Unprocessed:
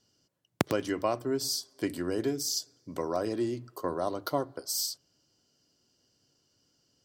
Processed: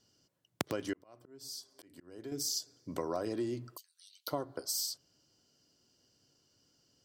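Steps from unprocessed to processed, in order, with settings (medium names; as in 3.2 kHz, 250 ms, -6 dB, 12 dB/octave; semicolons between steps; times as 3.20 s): compression 4:1, threshold -32 dBFS, peak gain reduction 11 dB; 0.93–2.32 s: slow attack 751 ms; 3.77–4.28 s: steep high-pass 2.5 kHz 48 dB/octave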